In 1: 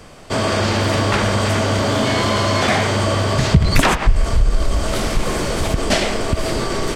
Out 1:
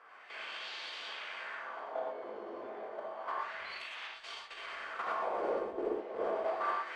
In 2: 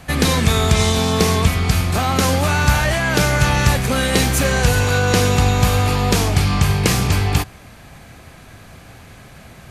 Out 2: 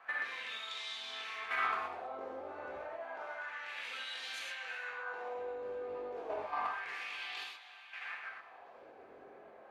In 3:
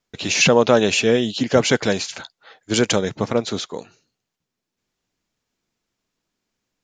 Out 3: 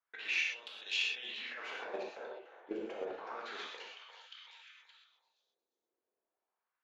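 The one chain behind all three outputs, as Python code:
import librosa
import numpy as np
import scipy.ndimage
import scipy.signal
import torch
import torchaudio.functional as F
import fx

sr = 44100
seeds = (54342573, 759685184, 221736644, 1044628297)

p1 = fx.bass_treble(x, sr, bass_db=-11, treble_db=-11)
p2 = fx.over_compress(p1, sr, threshold_db=-27.0, ratio=-1.0)
p3 = fx.peak_eq(p2, sr, hz=130.0, db=-14.5, octaves=1.2)
p4 = fx.comb_fb(p3, sr, f0_hz=120.0, decay_s=0.44, harmonics='odd', damping=0.0, mix_pct=50)
p5 = p4 + fx.echo_stepped(p4, sr, ms=354, hz=780.0, octaves=0.7, feedback_pct=70, wet_db=-4.5, dry=0)
p6 = np.clip(p5, -10.0 ** (-22.5 / 20.0), 10.0 ** (-22.5 / 20.0))
p7 = fx.wah_lfo(p6, sr, hz=0.3, low_hz=390.0, high_hz=3700.0, q=2.0)
p8 = fx.level_steps(p7, sr, step_db=12)
y = fx.rev_gated(p8, sr, seeds[0], gate_ms=150, shape='flat', drr_db=-3.0)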